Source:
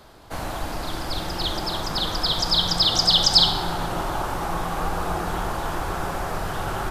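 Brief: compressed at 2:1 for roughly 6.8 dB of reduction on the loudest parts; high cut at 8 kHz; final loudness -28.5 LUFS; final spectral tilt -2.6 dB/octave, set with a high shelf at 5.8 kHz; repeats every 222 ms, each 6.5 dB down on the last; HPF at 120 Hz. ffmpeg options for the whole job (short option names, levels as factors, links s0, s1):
-af "highpass=120,lowpass=8000,highshelf=f=5800:g=6,acompressor=threshold=0.0708:ratio=2,aecho=1:1:222|444|666|888|1110|1332:0.473|0.222|0.105|0.0491|0.0231|0.0109,volume=0.596"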